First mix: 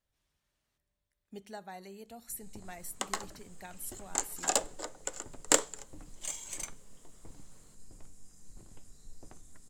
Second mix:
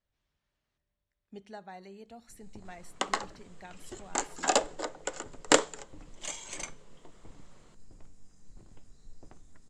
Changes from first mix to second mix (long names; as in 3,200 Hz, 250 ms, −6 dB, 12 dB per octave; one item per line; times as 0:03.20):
second sound +7.0 dB
master: add high-frequency loss of the air 98 metres